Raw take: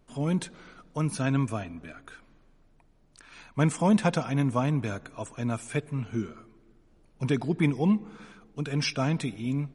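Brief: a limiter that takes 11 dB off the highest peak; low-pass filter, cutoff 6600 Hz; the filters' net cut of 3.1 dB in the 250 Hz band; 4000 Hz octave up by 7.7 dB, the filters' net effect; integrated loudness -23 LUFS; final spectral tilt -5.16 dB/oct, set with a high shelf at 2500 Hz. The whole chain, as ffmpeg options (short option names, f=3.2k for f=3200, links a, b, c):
-af "lowpass=6.6k,equalizer=f=250:t=o:g=-4.5,highshelf=f=2.5k:g=7.5,equalizer=f=4k:t=o:g=4,volume=8.5dB,alimiter=limit=-10dB:level=0:latency=1"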